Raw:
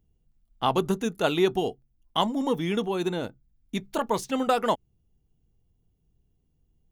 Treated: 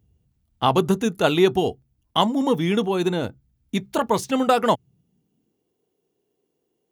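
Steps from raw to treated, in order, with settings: high-pass sweep 78 Hz -> 400 Hz, 4.42–5.80 s; trim +5 dB

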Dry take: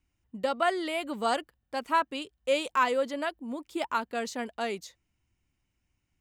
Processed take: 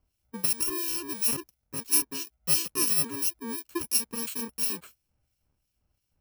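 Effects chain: bit-reversed sample order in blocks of 64 samples; harmonic tremolo 2.9 Hz, depth 70%, crossover 2 kHz; trim +4 dB

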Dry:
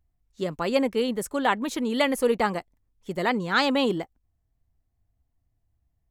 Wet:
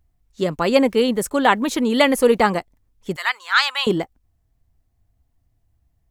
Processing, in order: 0.85–2.44 s: word length cut 12-bit, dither none; 3.16–3.87 s: high-pass 1.1 kHz 24 dB/octave; trim +7.5 dB

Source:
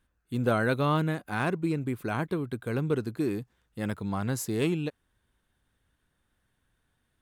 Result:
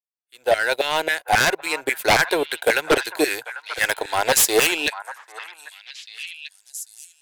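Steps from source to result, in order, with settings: fade-in on the opening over 2.07 s; LFO high-pass saw down 3.7 Hz 680–1800 Hz; in parallel at -7 dB: one-sided clip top -29.5 dBFS; on the sum: static phaser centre 490 Hz, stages 4; power-law waveshaper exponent 1.4; sine folder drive 19 dB, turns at -16 dBFS; on a send: repeats whose band climbs or falls 793 ms, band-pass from 1.2 kHz, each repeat 1.4 oct, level -9 dB; on the sum: trim +6 dB

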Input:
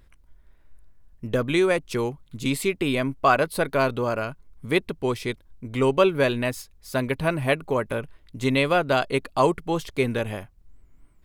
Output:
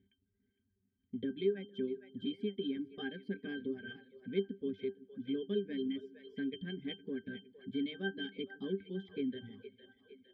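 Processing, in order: speed mistake 44.1 kHz file played as 48 kHz; vowel filter i; two-band feedback delay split 420 Hz, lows 154 ms, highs 460 ms, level -12.5 dB; reverb removal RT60 1 s; pitch-class resonator G, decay 0.13 s; in parallel at +1.5 dB: compression, threshold -56 dBFS, peak gain reduction 17 dB; on the sum: trim +9.5 dB

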